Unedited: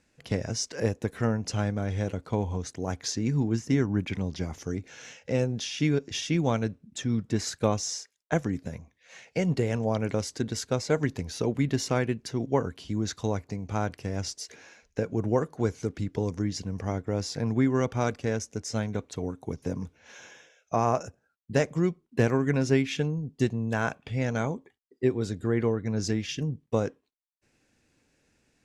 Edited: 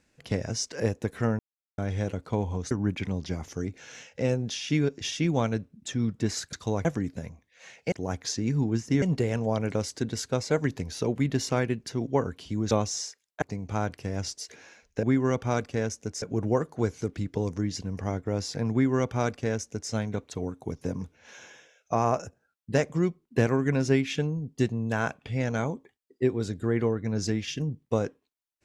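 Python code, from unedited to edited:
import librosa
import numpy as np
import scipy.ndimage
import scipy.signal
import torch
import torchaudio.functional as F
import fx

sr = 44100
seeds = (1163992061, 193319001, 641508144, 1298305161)

y = fx.edit(x, sr, fx.silence(start_s=1.39, length_s=0.39),
    fx.move(start_s=2.71, length_s=1.1, to_s=9.41),
    fx.swap(start_s=7.63, length_s=0.71, other_s=13.1, other_length_s=0.32),
    fx.duplicate(start_s=17.53, length_s=1.19, to_s=15.03), tone=tone)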